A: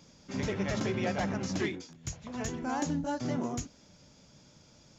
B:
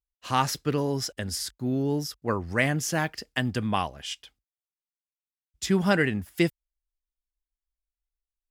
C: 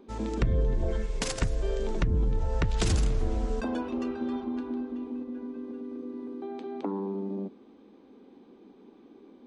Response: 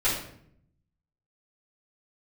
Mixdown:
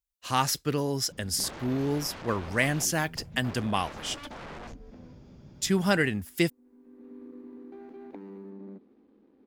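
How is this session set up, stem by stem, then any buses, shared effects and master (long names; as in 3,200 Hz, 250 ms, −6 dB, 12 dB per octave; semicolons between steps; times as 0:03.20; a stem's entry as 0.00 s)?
+2.5 dB, 1.10 s, bus A, no send, low-shelf EQ 210 Hz +11 dB; wrap-around overflow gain 29 dB
−2.0 dB, 0.00 s, no bus, no send, high-shelf EQ 4,400 Hz +7.5 dB
−5.5 dB, 1.30 s, bus A, no send, running median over 41 samples; high-shelf EQ 3,400 Hz +8.5 dB; automatic ducking −22 dB, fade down 0.85 s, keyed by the second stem
bus A: 0.0 dB, head-to-tape spacing loss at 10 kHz 25 dB; downward compressor 6 to 1, threshold −40 dBFS, peak gain reduction 9 dB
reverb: not used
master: no processing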